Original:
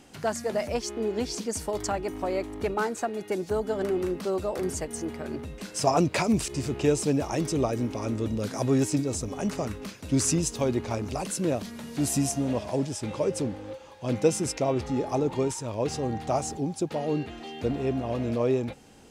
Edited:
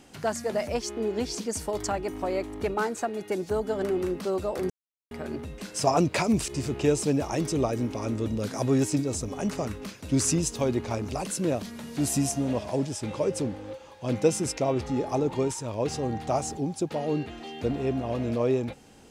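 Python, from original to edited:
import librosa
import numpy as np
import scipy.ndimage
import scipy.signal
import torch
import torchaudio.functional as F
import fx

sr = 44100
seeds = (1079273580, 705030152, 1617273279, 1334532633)

y = fx.edit(x, sr, fx.silence(start_s=4.7, length_s=0.41), tone=tone)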